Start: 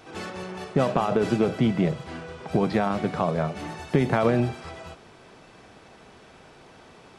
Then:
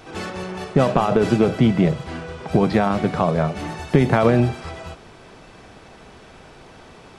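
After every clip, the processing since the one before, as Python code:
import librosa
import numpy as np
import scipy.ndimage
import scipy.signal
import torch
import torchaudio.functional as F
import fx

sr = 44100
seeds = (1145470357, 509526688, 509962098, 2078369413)

y = fx.low_shelf(x, sr, hz=61.0, db=10.5)
y = y * librosa.db_to_amplitude(5.0)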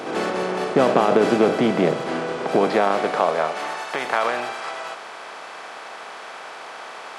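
y = fx.bin_compress(x, sr, power=0.6)
y = fx.filter_sweep_highpass(y, sr, from_hz=310.0, to_hz=910.0, start_s=2.34, end_s=3.85, q=0.93)
y = y * librosa.db_to_amplitude(-1.5)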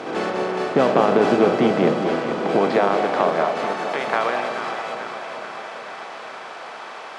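y = fx.air_absorb(x, sr, metres=53.0)
y = fx.echo_alternate(y, sr, ms=218, hz=1000.0, feedback_pct=81, wet_db=-7.0)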